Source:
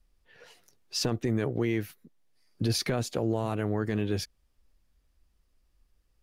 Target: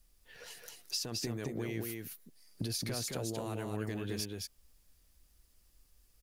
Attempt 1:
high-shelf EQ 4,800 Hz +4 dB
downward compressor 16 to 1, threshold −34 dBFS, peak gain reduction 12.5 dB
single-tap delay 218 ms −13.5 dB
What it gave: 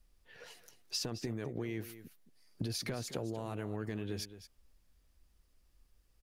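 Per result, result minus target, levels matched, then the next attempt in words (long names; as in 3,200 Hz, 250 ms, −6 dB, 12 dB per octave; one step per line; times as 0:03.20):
echo-to-direct −10 dB; 8,000 Hz band −3.5 dB
high-shelf EQ 4,800 Hz +4 dB
downward compressor 16 to 1, threshold −34 dBFS, peak gain reduction 12.5 dB
single-tap delay 218 ms −3.5 dB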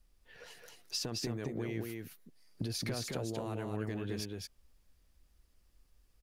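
8,000 Hz band −3.5 dB
high-shelf EQ 4,800 Hz +15 dB
downward compressor 16 to 1, threshold −34 dBFS, peak gain reduction 17 dB
single-tap delay 218 ms −3.5 dB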